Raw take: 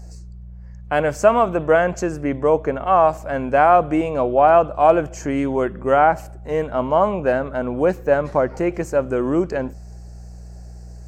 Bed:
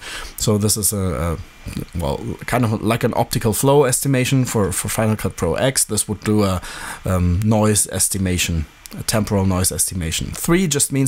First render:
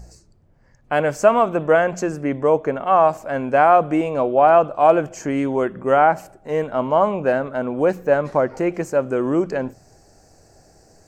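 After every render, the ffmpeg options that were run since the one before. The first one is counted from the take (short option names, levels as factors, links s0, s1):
-af "bandreject=f=60:t=h:w=4,bandreject=f=120:t=h:w=4,bandreject=f=180:t=h:w=4"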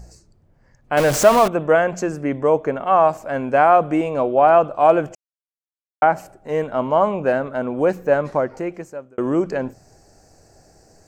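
-filter_complex "[0:a]asettb=1/sr,asplit=3[s0][s1][s2];[s0]atrim=end=0.974[s3];[s1]atrim=start=0.97:end=1.48,asetpts=PTS-STARTPTS,afade=t=in:d=0.004:c=qsin,afade=t=out:st=0.506:d=0.004:c=qsin,aeval=exprs='val(0)+0.5*0.133*sgn(val(0))':c=same[s4];[s2]atrim=start=1.476[s5];[s3][s4]acrossfade=d=0.004:c1=hsin:c2=qsin[s6];[s6][s5]acrossfade=d=0.004:c1=qsin:c2=hsin,asplit=4[s7][s8][s9][s10];[s7]atrim=end=5.15,asetpts=PTS-STARTPTS,afade=t=out:st=5.146:d=0.004:c=hsin[s11];[s8]atrim=start=5.15:end=6.02,asetpts=PTS-STARTPTS,volume=0[s12];[s9]atrim=start=6.02:end=9.18,asetpts=PTS-STARTPTS,afade=t=in:d=0.004:c=hsin,afade=t=out:st=2.2:d=0.96[s13];[s10]atrim=start=9.18,asetpts=PTS-STARTPTS,afade=t=in:d=0.004:c=hsin[s14];[s11][s12][s13][s14]concat=n=4:v=0:a=1"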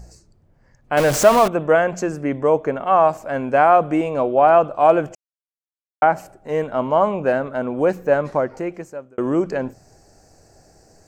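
-af anull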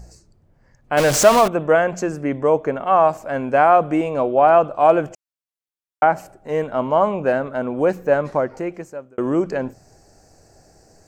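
-filter_complex "[0:a]asettb=1/sr,asplit=3[s0][s1][s2];[s0]atrim=end=0.984[s3];[s1]atrim=start=0.98:end=1.41,asetpts=PTS-STARTPTS,afade=t=in:d=0.004:c=qsin,afade=t=out:st=0.426:d=0.004:c=qsin,equalizer=f=5300:w=0.51:g=4.5[s4];[s2]atrim=start=1.406[s5];[s3][s4]acrossfade=d=0.004:c1=hsin:c2=qsin[s6];[s6][s5]acrossfade=d=0.004:c1=qsin:c2=hsin"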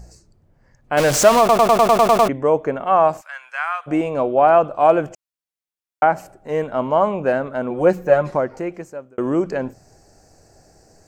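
-filter_complex "[0:a]asplit=3[s0][s1][s2];[s0]afade=t=out:st=3.2:d=0.02[s3];[s1]highpass=f=1300:w=0.5412,highpass=f=1300:w=1.3066,afade=t=in:st=3.2:d=0.02,afade=t=out:st=3.86:d=0.02[s4];[s2]afade=t=in:st=3.86:d=0.02[s5];[s3][s4][s5]amix=inputs=3:normalize=0,asettb=1/sr,asplit=3[s6][s7][s8];[s6]atrim=end=7.704[s9];[s7]atrim=start=7.7:end=8.36,asetpts=PTS-STARTPTS,afade=t=in:d=0.004:c=qsin,afade=t=out:st=0.656:d=0.004:c=qsin,aecho=1:1:5.6:0.65,atrim=end_sample=29106[s10];[s8]atrim=start=8.356[s11];[s9][s10]acrossfade=d=0.004:c1=hsin:c2=qsin[s12];[s12][s11]acrossfade=d=0.004:c1=qsin:c2=hsin,asplit=10[s13][s14][s15][s16][s17][s18][s19][s20][s21][s22];[s13]atrim=end=1.492[s23];[s14]atrim=start=1.388:end=1.492[s24];[s15]atrim=start=1.388:end=1.492[s25];[s16]atrim=start=1.388:end=1.492[s26];[s17]atrim=start=1.388:end=1.492[s27];[s18]atrim=start=1.388:end=1.492[s28];[s19]atrim=start=1.388:end=1.492[s29];[s20]atrim=start=1.388:end=1.492[s30];[s21]atrim=start=1.388:end=1.492[s31];[s22]atrim=start=2.288[s32];[s23][s24]acrossfade=d=0.004:c1=hsin:c2=hsin[s33];[s33][s25]acrossfade=d=0.004:c1=hsin:c2=hsin[s34];[s34][s26]acrossfade=d=0.004:c1=hsin:c2=hsin[s35];[s35][s27]acrossfade=d=0.004:c1=hsin:c2=hsin[s36];[s36][s28]acrossfade=d=0.004:c1=hsin:c2=hsin[s37];[s37][s29]acrossfade=d=0.004:c1=hsin:c2=hsin[s38];[s38][s30]acrossfade=d=0.004:c1=hsin:c2=hsin[s39];[s39][s31]acrossfade=d=0.004:c1=hsin:c2=hsin[s40];[s40][s32]acrossfade=d=0.004:c1=hsin:c2=hsin"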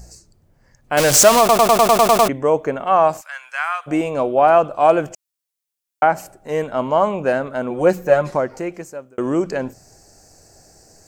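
-af "highshelf=f=3800:g=10"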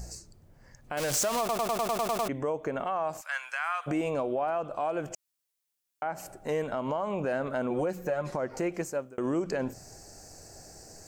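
-af "acompressor=threshold=0.0631:ratio=5,alimiter=limit=0.0841:level=0:latency=1:release=97"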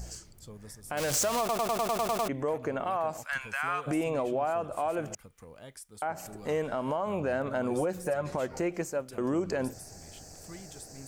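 -filter_complex "[1:a]volume=0.0282[s0];[0:a][s0]amix=inputs=2:normalize=0"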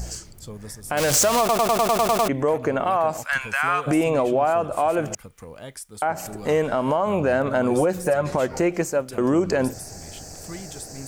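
-af "volume=2.99"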